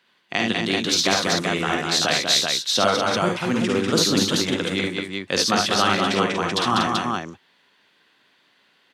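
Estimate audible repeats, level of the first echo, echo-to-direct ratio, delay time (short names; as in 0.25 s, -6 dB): 4, -4.5 dB, 2.0 dB, 52 ms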